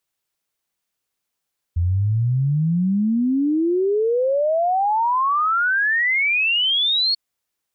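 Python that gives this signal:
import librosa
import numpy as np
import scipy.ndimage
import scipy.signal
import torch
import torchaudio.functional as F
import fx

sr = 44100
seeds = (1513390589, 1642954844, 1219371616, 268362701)

y = fx.ess(sr, length_s=5.39, from_hz=83.0, to_hz=4400.0, level_db=-16.0)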